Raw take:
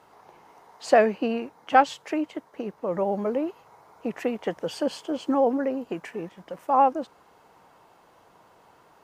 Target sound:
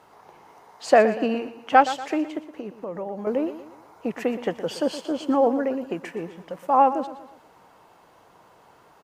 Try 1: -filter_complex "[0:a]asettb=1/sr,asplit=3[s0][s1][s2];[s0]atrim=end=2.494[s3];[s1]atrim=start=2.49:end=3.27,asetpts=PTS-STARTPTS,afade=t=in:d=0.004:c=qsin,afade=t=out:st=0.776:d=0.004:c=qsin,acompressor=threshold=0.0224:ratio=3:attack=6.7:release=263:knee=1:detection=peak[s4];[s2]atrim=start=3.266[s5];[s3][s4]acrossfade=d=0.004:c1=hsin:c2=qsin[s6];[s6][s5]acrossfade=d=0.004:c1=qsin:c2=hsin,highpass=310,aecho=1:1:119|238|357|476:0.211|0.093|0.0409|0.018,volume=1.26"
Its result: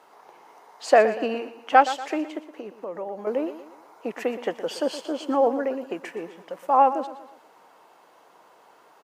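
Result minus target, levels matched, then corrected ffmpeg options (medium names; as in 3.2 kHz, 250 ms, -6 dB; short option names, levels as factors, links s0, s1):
250 Hz band -4.0 dB
-filter_complex "[0:a]asettb=1/sr,asplit=3[s0][s1][s2];[s0]atrim=end=2.494[s3];[s1]atrim=start=2.49:end=3.27,asetpts=PTS-STARTPTS,afade=t=in:d=0.004:c=qsin,afade=t=out:st=0.776:d=0.004:c=qsin,acompressor=threshold=0.0224:ratio=3:attack=6.7:release=263:knee=1:detection=peak[s4];[s2]atrim=start=3.266[s5];[s3][s4]acrossfade=d=0.004:c1=hsin:c2=qsin[s6];[s6][s5]acrossfade=d=0.004:c1=qsin:c2=hsin,aecho=1:1:119|238|357|476:0.211|0.093|0.0409|0.018,volume=1.26"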